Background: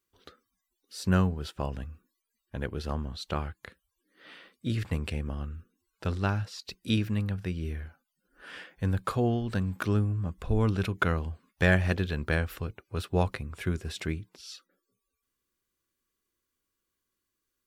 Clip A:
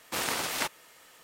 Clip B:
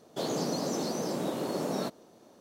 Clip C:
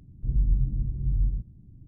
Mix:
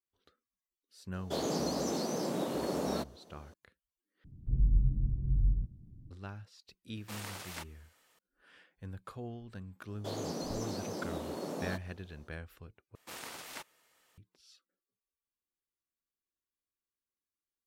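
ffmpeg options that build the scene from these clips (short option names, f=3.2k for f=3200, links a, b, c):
-filter_complex "[2:a]asplit=2[a][b];[1:a]asplit=2[c][d];[0:a]volume=-16.5dB,asplit=3[e][f][g];[e]atrim=end=4.244[h];[3:a]atrim=end=1.87,asetpts=PTS-STARTPTS,volume=-3.5dB[i];[f]atrim=start=6.106:end=12.954[j];[d]atrim=end=1.23,asetpts=PTS-STARTPTS,volume=-14.5dB[k];[g]atrim=start=14.176[l];[a]atrim=end=2.4,asetpts=PTS-STARTPTS,volume=-2dB,afade=t=in:d=0.004:c=hsin,afade=t=out:st=2.396:d=0.004:c=hsin,adelay=1140[m];[c]atrim=end=1.23,asetpts=PTS-STARTPTS,volume=-13.5dB,afade=t=in:d=0.004:c=hsin,afade=t=out:st=1.226:d=0.004:c=hsin,adelay=6960[n];[b]atrim=end=2.4,asetpts=PTS-STARTPTS,volume=-7dB,afade=t=in:d=0.004:c=hsin,afade=t=out:st=2.396:d=0.004:c=hsin,adelay=9880[o];[h][i]acrossfade=d=0.004:c1=hsin:c2=hsin[p];[p][j]acrossfade=d=0.004:c1=hsin:c2=hsin[q];[q][k]acrossfade=d=0.004:c1=hsin:c2=hsin[r];[r][l]acrossfade=d=0.004:c1=hsin:c2=hsin[s];[s][m][n][o]amix=inputs=4:normalize=0"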